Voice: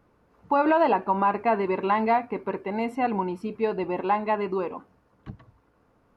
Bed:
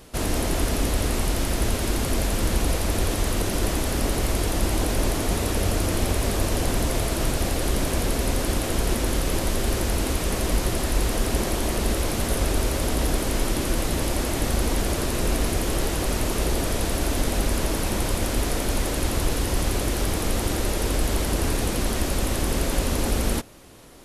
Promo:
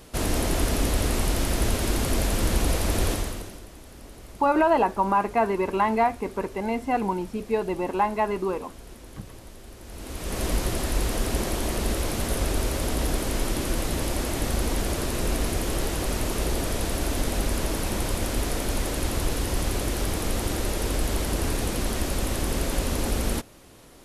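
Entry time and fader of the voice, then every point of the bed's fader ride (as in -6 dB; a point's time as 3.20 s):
3.90 s, +0.5 dB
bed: 3.11 s -0.5 dB
3.66 s -21 dB
9.78 s -21 dB
10.42 s -2.5 dB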